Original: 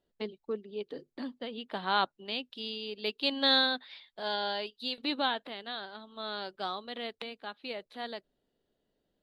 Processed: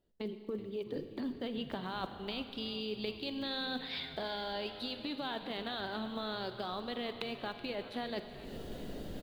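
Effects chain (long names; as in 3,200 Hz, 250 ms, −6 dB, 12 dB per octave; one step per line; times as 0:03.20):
one scale factor per block 7 bits
camcorder AGC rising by 59 dB per second
low-shelf EQ 330 Hz +8.5 dB
reversed playback
downward compressor 6 to 1, threshold −39 dBFS, peak gain reduction 20 dB
reversed playback
echo with shifted repeats 376 ms, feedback 63%, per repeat −100 Hz, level −16 dB
on a send at −9 dB: convolution reverb RT60 2.7 s, pre-delay 33 ms
on the sum: level +1.5 dB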